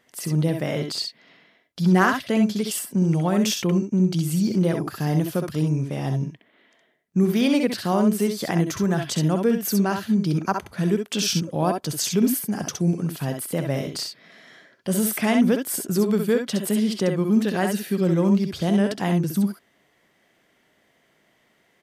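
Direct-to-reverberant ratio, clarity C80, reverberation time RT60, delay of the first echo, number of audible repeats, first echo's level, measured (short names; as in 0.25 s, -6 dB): none, none, none, 65 ms, 1, -5.0 dB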